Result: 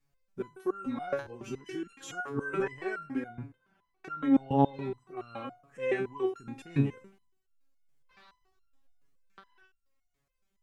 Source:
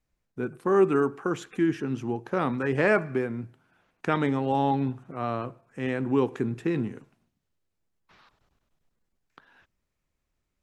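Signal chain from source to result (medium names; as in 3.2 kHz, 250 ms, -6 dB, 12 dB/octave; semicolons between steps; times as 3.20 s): 0.86–2.60 s: reverse; 3.19–4.72 s: treble shelf 2.2 kHz -9 dB; loudness maximiser +18.5 dB; resonator arpeggio 7.1 Hz 140–1400 Hz; trim -6 dB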